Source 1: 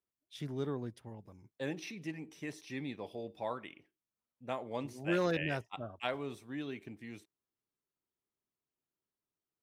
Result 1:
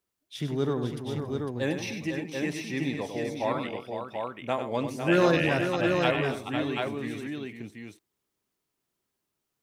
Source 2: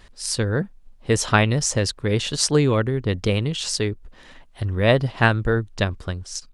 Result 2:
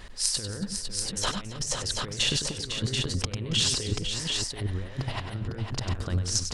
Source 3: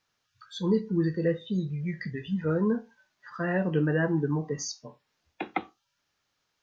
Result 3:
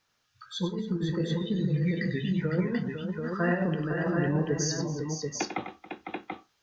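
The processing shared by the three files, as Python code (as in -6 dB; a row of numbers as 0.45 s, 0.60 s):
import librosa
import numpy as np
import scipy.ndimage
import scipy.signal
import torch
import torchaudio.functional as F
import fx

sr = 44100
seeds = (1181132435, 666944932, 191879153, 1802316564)

y = fx.over_compress(x, sr, threshold_db=-28.0, ratio=-0.5)
y = fx.echo_multitap(y, sr, ms=(97, 277, 503, 735), db=(-8.5, -17.0, -7.5, -4.5))
y = y * 10.0 ** (-30 / 20.0) / np.sqrt(np.mean(np.square(y)))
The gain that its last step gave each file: +9.0 dB, -2.5 dB, +0.5 dB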